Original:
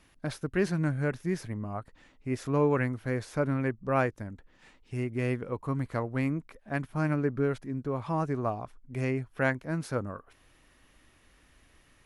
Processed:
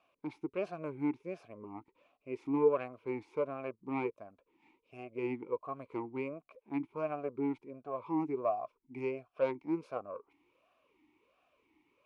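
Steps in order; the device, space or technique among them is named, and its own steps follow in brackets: talk box (tube stage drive 18 dB, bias 0.6; vowel sweep a-u 1.4 Hz); 8.43–9.85 bell 5200 Hz +5.5 dB 0.37 oct; gain +7.5 dB

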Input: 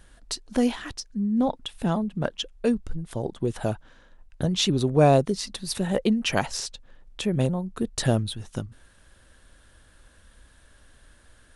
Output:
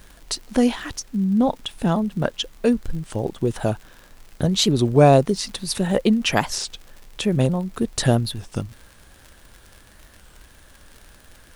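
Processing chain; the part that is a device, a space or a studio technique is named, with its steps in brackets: warped LP (record warp 33 1/3 rpm, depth 160 cents; crackle 79/s -38 dBFS; pink noise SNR 33 dB); gain +4.5 dB

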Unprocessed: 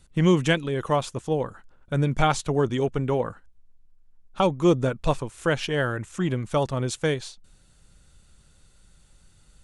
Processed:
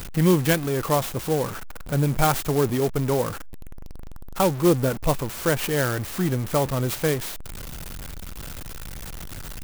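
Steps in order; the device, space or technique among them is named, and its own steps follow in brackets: early CD player with a faulty converter (zero-crossing step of -29 dBFS; clock jitter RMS 0.061 ms)

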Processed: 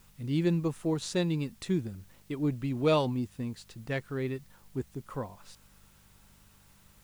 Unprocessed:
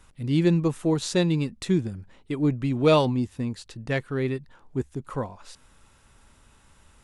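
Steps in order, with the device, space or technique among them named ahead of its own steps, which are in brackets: video cassette with head-switching buzz (buzz 50 Hz, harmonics 4, -58 dBFS -1 dB/oct; white noise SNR 32 dB); gain -6.5 dB

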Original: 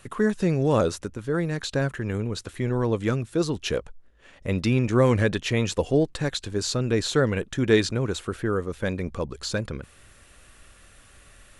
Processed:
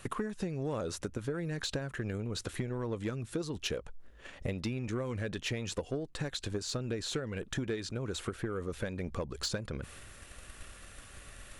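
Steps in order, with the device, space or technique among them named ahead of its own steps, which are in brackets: drum-bus smash (transient shaper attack +8 dB, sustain +4 dB; compressor 16:1, threshold -30 dBFS, peak gain reduction 22 dB; soft clip -24.5 dBFS, distortion -17 dB)

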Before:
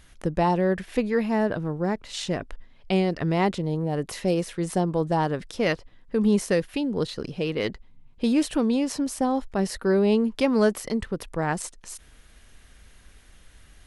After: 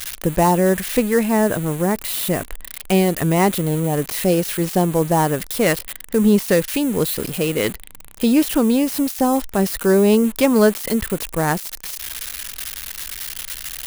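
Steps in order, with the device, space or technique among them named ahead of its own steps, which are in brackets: budget class-D amplifier (switching dead time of 0.086 ms; switching spikes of -19 dBFS); gain +6.5 dB

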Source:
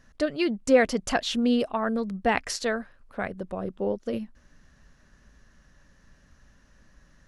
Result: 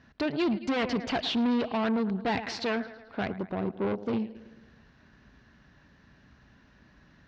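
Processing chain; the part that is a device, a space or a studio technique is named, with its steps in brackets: analogue delay pedal into a guitar amplifier (analogue delay 0.109 s, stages 4096, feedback 56%, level -19 dB; tube stage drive 30 dB, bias 0.5; speaker cabinet 88–4100 Hz, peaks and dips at 170 Hz -3 dB, 540 Hz -8 dB, 1200 Hz -5 dB, 1800 Hz -4 dB, 3100 Hz -3 dB); gain +7.5 dB

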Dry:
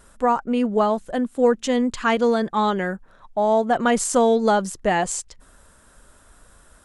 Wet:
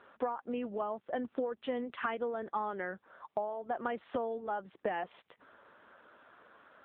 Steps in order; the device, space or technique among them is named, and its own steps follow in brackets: voicemail (BPF 320–3000 Hz; compressor 12:1, threshold -31 dBFS, peak gain reduction 18 dB; AMR-NB 7.95 kbps 8000 Hz)

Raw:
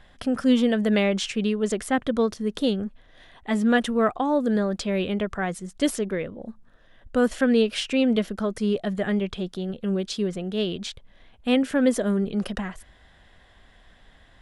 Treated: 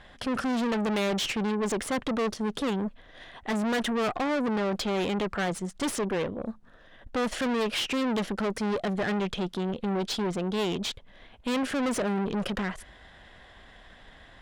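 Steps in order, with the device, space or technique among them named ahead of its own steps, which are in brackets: tube preamp driven hard (tube stage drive 32 dB, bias 0.55; low shelf 190 Hz -5.5 dB; high shelf 6800 Hz -8 dB); gain +8 dB

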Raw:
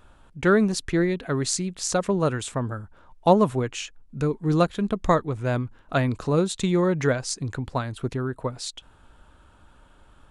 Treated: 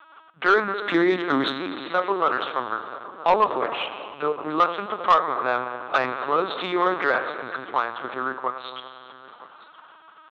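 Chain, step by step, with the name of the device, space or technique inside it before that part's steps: harmonic-percussive split harmonic +4 dB; 0.83–1.52 graphic EQ 125/250/4000/8000 Hz +9/+12/+9/+11 dB; echo 0.967 s -20.5 dB; plate-style reverb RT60 2.5 s, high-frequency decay 0.85×, DRR 7 dB; talking toy (LPC vocoder at 8 kHz pitch kept; HPF 650 Hz 12 dB/oct; bell 1200 Hz +8.5 dB 0.59 oct; soft clip -12.5 dBFS, distortion -16 dB); gain +4 dB

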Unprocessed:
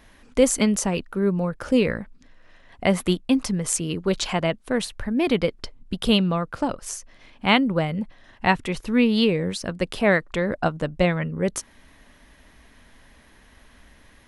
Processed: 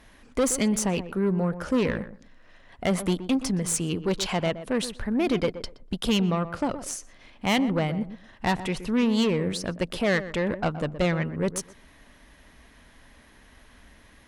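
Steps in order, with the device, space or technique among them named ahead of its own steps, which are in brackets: rockabilly slapback (tube stage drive 18 dB, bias 0.3; tape echo 0.123 s, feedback 21%, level -10 dB, low-pass 1100 Hz)

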